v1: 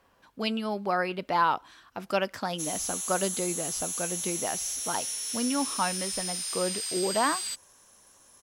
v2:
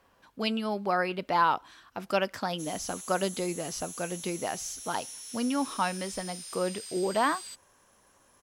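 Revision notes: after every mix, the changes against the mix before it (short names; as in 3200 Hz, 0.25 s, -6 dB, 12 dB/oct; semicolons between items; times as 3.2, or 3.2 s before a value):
background -9.5 dB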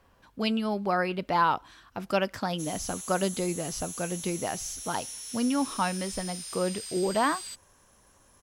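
speech: add low shelf 140 Hz +11.5 dB; background +3.0 dB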